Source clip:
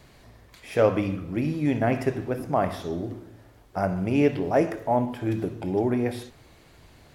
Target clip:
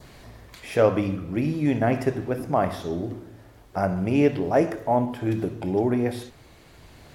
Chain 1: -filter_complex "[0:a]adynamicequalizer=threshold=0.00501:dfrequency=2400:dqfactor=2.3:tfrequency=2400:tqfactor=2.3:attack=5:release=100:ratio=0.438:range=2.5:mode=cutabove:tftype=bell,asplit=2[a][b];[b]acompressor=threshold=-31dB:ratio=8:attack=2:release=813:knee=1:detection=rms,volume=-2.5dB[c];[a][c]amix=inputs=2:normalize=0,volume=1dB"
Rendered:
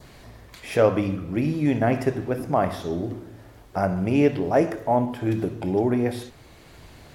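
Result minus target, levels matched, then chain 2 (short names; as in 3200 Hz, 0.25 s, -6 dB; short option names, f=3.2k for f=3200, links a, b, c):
compressor: peak gain reduction -9 dB
-filter_complex "[0:a]adynamicequalizer=threshold=0.00501:dfrequency=2400:dqfactor=2.3:tfrequency=2400:tqfactor=2.3:attack=5:release=100:ratio=0.438:range=2.5:mode=cutabove:tftype=bell,asplit=2[a][b];[b]acompressor=threshold=-41.5dB:ratio=8:attack=2:release=813:knee=1:detection=rms,volume=-2.5dB[c];[a][c]amix=inputs=2:normalize=0,volume=1dB"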